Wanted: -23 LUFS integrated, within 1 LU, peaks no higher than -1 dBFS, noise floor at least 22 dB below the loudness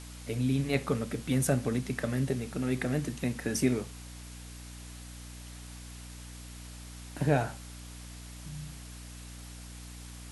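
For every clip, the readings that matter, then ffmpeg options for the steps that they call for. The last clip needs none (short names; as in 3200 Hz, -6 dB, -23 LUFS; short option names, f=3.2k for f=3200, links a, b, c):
hum 60 Hz; harmonics up to 300 Hz; hum level -44 dBFS; noise floor -46 dBFS; noise floor target -54 dBFS; loudness -31.5 LUFS; peak -12.0 dBFS; loudness target -23.0 LUFS
-> -af "bandreject=f=60:t=h:w=6,bandreject=f=120:t=h:w=6,bandreject=f=180:t=h:w=6,bandreject=f=240:t=h:w=6,bandreject=f=300:t=h:w=6"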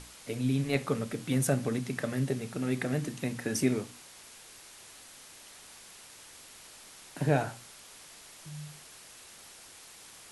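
hum none; noise floor -52 dBFS; noise floor target -54 dBFS
-> -af "afftdn=nr=6:nf=-52"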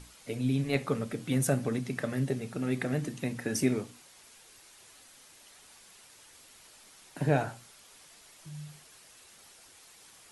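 noise floor -56 dBFS; loudness -31.5 LUFS; peak -12.0 dBFS; loudness target -23.0 LUFS
-> -af "volume=8.5dB"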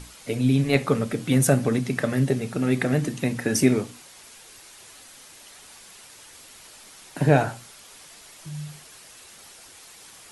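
loudness -23.0 LUFS; peak -3.5 dBFS; noise floor -48 dBFS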